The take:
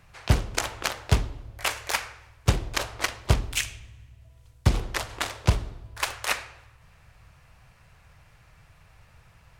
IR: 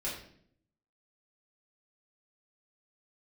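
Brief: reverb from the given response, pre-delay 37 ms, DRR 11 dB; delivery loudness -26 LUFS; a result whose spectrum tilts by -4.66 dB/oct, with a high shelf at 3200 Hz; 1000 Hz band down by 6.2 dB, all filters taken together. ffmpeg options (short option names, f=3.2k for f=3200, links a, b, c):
-filter_complex "[0:a]equalizer=f=1k:t=o:g=-7.5,highshelf=f=3.2k:g=-5.5,asplit=2[a][b];[1:a]atrim=start_sample=2205,adelay=37[c];[b][c]afir=irnorm=-1:irlink=0,volume=-14dB[d];[a][d]amix=inputs=2:normalize=0,volume=3.5dB"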